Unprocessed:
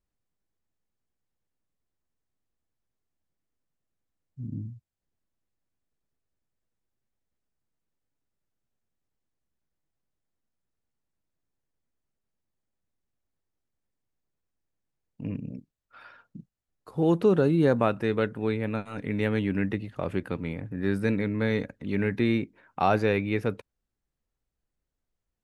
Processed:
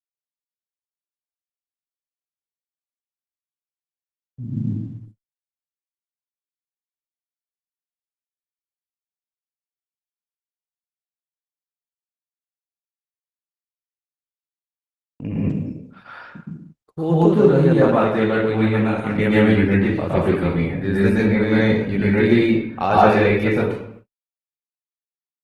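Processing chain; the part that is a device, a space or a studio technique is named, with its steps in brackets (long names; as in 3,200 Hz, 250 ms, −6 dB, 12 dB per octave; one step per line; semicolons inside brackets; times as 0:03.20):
speakerphone in a meeting room (convolution reverb RT60 0.70 s, pre-delay 110 ms, DRR −7 dB; automatic gain control gain up to 5 dB; noise gate −42 dBFS, range −51 dB; Opus 16 kbit/s 48,000 Hz)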